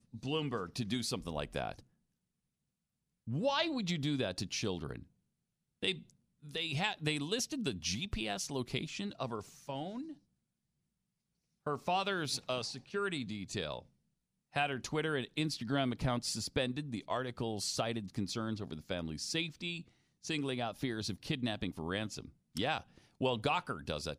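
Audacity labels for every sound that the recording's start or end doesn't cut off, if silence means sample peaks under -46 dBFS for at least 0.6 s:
3.270000	5.030000	sound
5.830000	10.130000	sound
11.660000	13.820000	sound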